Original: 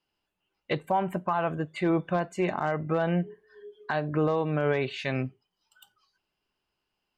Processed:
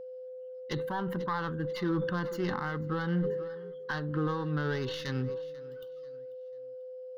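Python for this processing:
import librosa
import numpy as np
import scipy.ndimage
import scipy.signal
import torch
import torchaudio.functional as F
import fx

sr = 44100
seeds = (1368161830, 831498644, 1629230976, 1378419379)

p1 = fx.tracing_dist(x, sr, depth_ms=0.086)
p2 = fx.clip_asym(p1, sr, top_db=-39.5, bottom_db=-20.0)
p3 = p1 + (p2 * 10.0 ** (-5.0 / 20.0))
p4 = fx.fixed_phaser(p3, sr, hz=2400.0, stages=6)
p5 = p4 + fx.echo_feedback(p4, sr, ms=491, feedback_pct=39, wet_db=-21.5, dry=0)
p6 = p5 + 10.0 ** (-36.0 / 20.0) * np.sin(2.0 * np.pi * 510.0 * np.arange(len(p5)) / sr)
p7 = fx.sustainer(p6, sr, db_per_s=37.0)
y = p7 * 10.0 ** (-4.5 / 20.0)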